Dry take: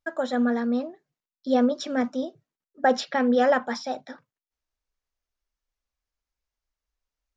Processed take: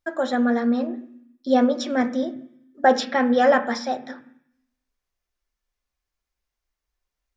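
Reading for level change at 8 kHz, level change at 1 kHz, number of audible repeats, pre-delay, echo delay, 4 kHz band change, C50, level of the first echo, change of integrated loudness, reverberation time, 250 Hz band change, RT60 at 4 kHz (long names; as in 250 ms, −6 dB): can't be measured, +4.5 dB, no echo audible, 3 ms, no echo audible, +3.5 dB, 17.0 dB, no echo audible, +3.0 dB, 0.65 s, +3.0 dB, 0.85 s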